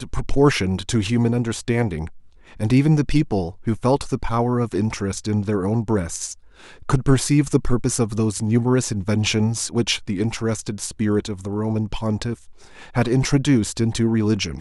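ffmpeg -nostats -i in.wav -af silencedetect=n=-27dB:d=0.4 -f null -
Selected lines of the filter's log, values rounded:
silence_start: 2.07
silence_end: 2.60 | silence_duration: 0.53
silence_start: 6.33
silence_end: 6.89 | silence_duration: 0.57
silence_start: 12.34
silence_end: 12.95 | silence_duration: 0.61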